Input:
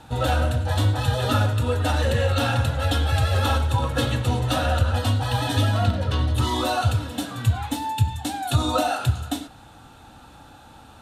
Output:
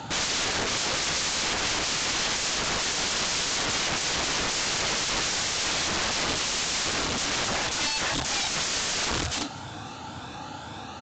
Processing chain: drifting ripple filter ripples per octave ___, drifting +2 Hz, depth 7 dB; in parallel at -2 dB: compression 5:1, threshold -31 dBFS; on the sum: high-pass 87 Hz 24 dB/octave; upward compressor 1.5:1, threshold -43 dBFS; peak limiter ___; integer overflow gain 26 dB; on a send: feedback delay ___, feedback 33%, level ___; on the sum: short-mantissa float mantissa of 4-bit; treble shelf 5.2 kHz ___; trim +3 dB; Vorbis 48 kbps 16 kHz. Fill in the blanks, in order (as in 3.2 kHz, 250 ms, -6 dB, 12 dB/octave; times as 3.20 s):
1.7, -13 dBFS, 539 ms, -23.5 dB, +4 dB